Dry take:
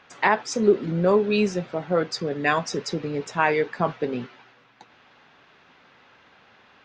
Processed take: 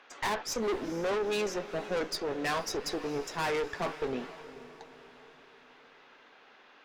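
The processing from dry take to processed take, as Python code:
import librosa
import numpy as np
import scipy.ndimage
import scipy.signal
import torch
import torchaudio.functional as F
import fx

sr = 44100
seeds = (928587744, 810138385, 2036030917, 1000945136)

y = scipy.signal.sosfilt(scipy.signal.butter(4, 260.0, 'highpass', fs=sr, output='sos'), x)
y = fx.tube_stage(y, sr, drive_db=28.0, bias=0.6)
y = fx.echo_diffused(y, sr, ms=458, feedback_pct=49, wet_db=-15.0)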